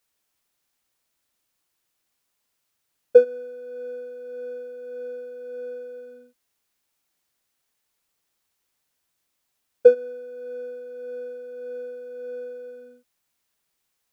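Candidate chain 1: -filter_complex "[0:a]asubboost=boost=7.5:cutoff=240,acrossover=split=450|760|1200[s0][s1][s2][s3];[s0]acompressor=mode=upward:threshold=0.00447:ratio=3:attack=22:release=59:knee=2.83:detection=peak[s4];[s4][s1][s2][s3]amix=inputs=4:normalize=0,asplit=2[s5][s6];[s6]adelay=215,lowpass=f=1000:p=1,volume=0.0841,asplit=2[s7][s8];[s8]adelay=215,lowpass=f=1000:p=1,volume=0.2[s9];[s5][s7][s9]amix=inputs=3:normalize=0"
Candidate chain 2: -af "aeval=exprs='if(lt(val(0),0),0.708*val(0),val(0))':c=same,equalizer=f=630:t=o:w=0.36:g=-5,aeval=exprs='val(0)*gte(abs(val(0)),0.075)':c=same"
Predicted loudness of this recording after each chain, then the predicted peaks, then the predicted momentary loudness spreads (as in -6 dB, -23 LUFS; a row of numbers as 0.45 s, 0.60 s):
-28.5 LUFS, -20.5 LUFS; -3.5 dBFS, -3.5 dBFS; 20 LU, 12 LU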